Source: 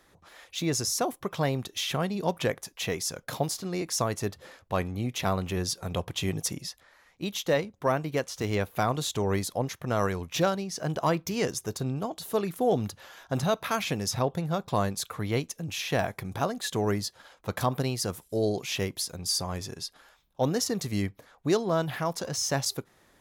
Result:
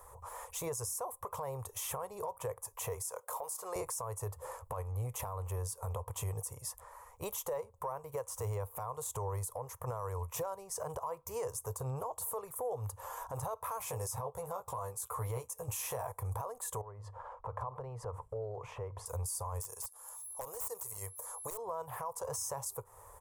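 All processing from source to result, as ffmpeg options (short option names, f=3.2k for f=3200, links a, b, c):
-filter_complex "[0:a]asettb=1/sr,asplit=3[a][b][c];[a]atrim=end=3.024[d];[b]atrim=start=3.02:end=3.76,asetpts=PTS-STARTPTS,afade=t=in:d=0.004:c=qsin,afade=t=out:st=0.736:d=0.004:c=qsin,highpass=440,acompressor=threshold=-34dB:ratio=2:attack=3.2:release=140:knee=1:detection=peak[e];[c]atrim=start=3.756[f];[d][e]acrossfade=d=0.004:c1=hsin:c2=qsin[g];[g][f]acrossfade=d=0.004:c1=qsin:c2=hsin,asettb=1/sr,asplit=3[h][i][j];[h]atrim=end=13.794[k];[i]atrim=start=13.79:end=16.12,asetpts=PTS-STARTPTS,afade=t=in:d=0.004:c=qsin,afade=t=out:st=2.326:d=0.004:c=qsin,highpass=51,equalizer=f=12k:t=o:w=2.5:g=3,asplit=2[l][m];[m]adelay=16,volume=-4.5dB[n];[l][n]amix=inputs=2:normalize=0,atrim=end_sample=102753[o];[j]atrim=start=16.116[p];[k][o]acrossfade=d=0.004:c1=hsin:c2=qsin[q];[q][p]acrossfade=d=0.004:c1=qsin:c2=hsin,asettb=1/sr,asplit=3[r][s][t];[r]atrim=end=16.814[u];[s]atrim=start=16.81:end=19.06,asetpts=PTS-STARTPTS,afade=t=in:d=0.004:c=qsin,afade=t=out:st=2.246:d=0.004:c=qsin,lowpass=1.8k,acompressor=threshold=-42dB:ratio=5:attack=3.2:release=140:knee=1:detection=peak,bandreject=f=50:t=h:w=6,bandreject=f=100:t=h:w=6,bandreject=f=150:t=h:w=6[v];[t]atrim=start=19.056[w];[u][v]acrossfade=d=0.004:c1=hsin:c2=qsin[x];[x][w]acrossfade=d=0.004:c1=qsin:c2=hsin,asettb=1/sr,asplit=3[y][z][aa];[y]atrim=end=19.604[ab];[z]atrim=start=19.6:end=21.58,asetpts=PTS-STARTPTS,afade=t=in:d=0.004:c=qsin,afade=t=out:st=1.976:d=0.004:c=qsin,bass=f=250:g=-12,treble=f=4k:g=15,aeval=exprs='(mod(7.08*val(0)+1,2)-1)/7.08':c=same,aeval=exprs='val(0)+0.00158*sin(2*PI*11000*n/s)':c=same[ac];[aa]atrim=start=21.576[ad];[ab][ac]acrossfade=d=0.004:c1=hsin:c2=qsin[ae];[ae][ad]acrossfade=d=0.004:c1=qsin:c2=hsin,firequalizer=gain_entry='entry(100,0);entry(180,-28);entry(310,-28);entry(460,-1);entry(690,-7);entry(990,6);entry(1500,-15);entry(3900,-25);entry(8200,2);entry(15000,0)':delay=0.05:min_phase=1,acompressor=threshold=-45dB:ratio=5,alimiter=level_in=16.5dB:limit=-24dB:level=0:latency=1:release=24,volume=-16.5dB,volume=11dB"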